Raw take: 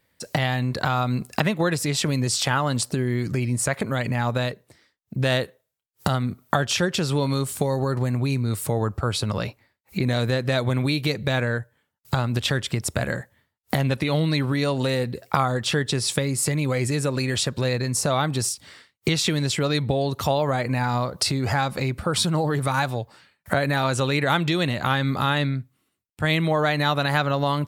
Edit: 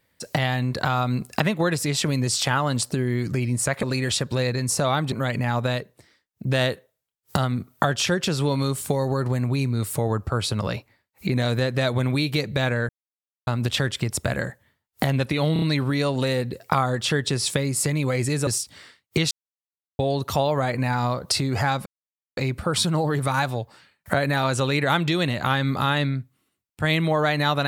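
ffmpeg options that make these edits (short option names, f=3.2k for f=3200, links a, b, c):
-filter_complex "[0:a]asplit=12[a][b][c][d][e][f][g][h][i][j][k][l];[a]atrim=end=3.832[m];[b]atrim=start=17.088:end=18.382[n];[c]atrim=start=3.828:end=11.6,asetpts=PTS-STARTPTS,afade=t=out:st=7.768:d=0.004:c=hsin[o];[d]atrim=start=11.6:end=12.18,asetpts=PTS-STARTPTS,volume=0[p];[e]atrim=start=12.18:end=14.272,asetpts=PTS-STARTPTS,afade=t=in:d=0.004:c=hsin[q];[f]atrim=start=14.238:end=14.272[r];[g]atrim=start=14.238:end=14.272[s];[h]atrim=start=14.238:end=17.092[t];[i]atrim=start=18.378:end=19.22,asetpts=PTS-STARTPTS,afade=t=out:st=0.838:d=0.004:c=hsin[u];[j]atrim=start=19.22:end=19.9,asetpts=PTS-STARTPTS,volume=0[v];[k]atrim=start=19.9:end=21.77,asetpts=PTS-STARTPTS,afade=t=in:d=0.004:c=hsin,afade=t=out:st=1.866:d=0.004:c=hsin,apad=pad_dur=0.51[w];[l]atrim=start=21.77,asetpts=PTS-STARTPTS,afade=t=in:d=0.004:c=hsin[x];[m][n]acrossfade=d=0.004:c1=hsin:c2=hsin[y];[o][p][q]concat=n=3:v=0:a=1[z];[y][z]acrossfade=d=0.004:c1=hsin:c2=hsin[aa];[aa][r]acrossfade=d=0.004:c1=hsin:c2=hsin[ab];[ab][s]acrossfade=d=0.004:c1=hsin:c2=hsin[ac];[ac][t]acrossfade=d=0.004:c1=hsin:c2=hsin[ad];[u][v][w][x]concat=n=4:v=0:a=1[ae];[ad][ae]acrossfade=d=0.004:c1=hsin:c2=hsin"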